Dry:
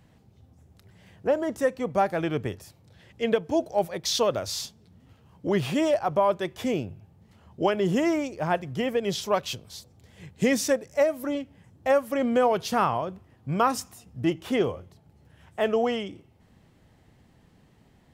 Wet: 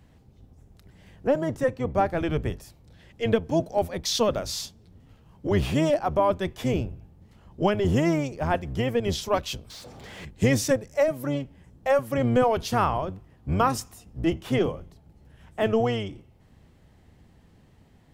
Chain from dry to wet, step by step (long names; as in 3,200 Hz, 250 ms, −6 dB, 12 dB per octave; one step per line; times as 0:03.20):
sub-octave generator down 1 octave, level 0 dB
0:01.51–0:02.17: high-shelf EQ 4,600 Hz −7 dB
0:09.70–0:10.25: mid-hump overdrive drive 31 dB, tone 2,700 Hz, clips at −32.5 dBFS